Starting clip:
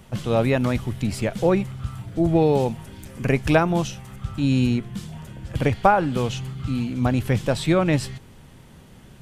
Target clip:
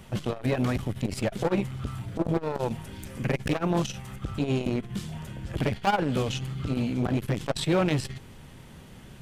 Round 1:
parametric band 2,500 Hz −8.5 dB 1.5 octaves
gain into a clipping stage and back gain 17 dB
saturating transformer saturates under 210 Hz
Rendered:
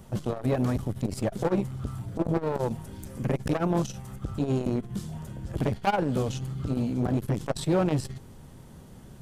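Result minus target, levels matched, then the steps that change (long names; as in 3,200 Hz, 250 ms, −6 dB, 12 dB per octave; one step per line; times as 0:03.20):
2,000 Hz band −5.0 dB
change: parametric band 2,500 Hz +2 dB 1.5 octaves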